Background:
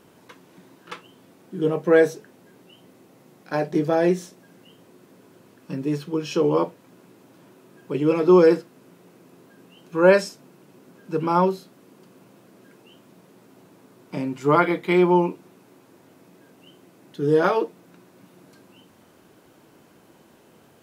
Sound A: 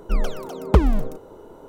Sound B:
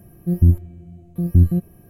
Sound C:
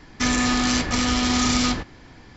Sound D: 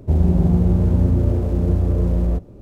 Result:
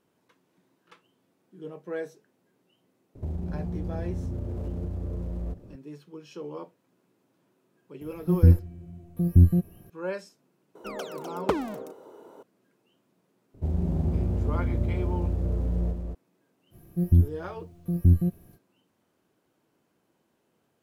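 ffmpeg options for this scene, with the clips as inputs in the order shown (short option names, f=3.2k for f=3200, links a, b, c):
-filter_complex "[4:a]asplit=2[a][b];[2:a]asplit=2[c][d];[0:a]volume=-18dB[e];[a]acompressor=threshold=-23dB:ratio=6:attack=3.2:release=140:knee=1:detection=peak[f];[1:a]highpass=280[g];[b]aecho=1:1:222:0.631[h];[d]acrusher=bits=10:mix=0:aa=0.000001[i];[f]atrim=end=2.61,asetpts=PTS-STARTPTS,volume=-6dB,afade=t=in:d=0.004:c=hsin,afade=t=out:st=2.606:d=0.004:c=hsin,adelay=3150[j];[c]atrim=end=1.89,asetpts=PTS-STARTPTS,volume=-3dB,afade=t=in:d=0.004:c=hsin,afade=t=out:st=1.886:d=0.004:c=hsin,adelay=8010[k];[g]atrim=end=1.68,asetpts=PTS-STARTPTS,volume=-4dB,afade=t=in:d=0.004:c=hsin,afade=t=out:st=1.676:d=0.004:c=hsin,adelay=10750[l];[h]atrim=end=2.61,asetpts=PTS-STARTPTS,volume=-11.5dB,afade=t=in:d=0.004:c=hsin,afade=t=out:st=2.606:d=0.004:c=hsin,adelay=13540[m];[i]atrim=end=1.89,asetpts=PTS-STARTPTS,volume=-5.5dB,afade=t=in:d=0.05,afade=t=out:st=1.84:d=0.05,adelay=16700[n];[e][j][k][l][m][n]amix=inputs=6:normalize=0"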